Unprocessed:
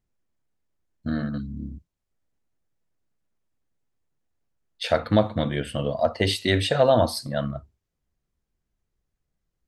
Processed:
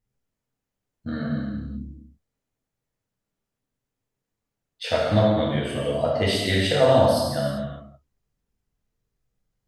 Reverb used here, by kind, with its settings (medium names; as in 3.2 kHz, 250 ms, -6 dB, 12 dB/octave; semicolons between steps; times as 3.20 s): gated-style reverb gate 420 ms falling, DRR -5.5 dB; trim -5 dB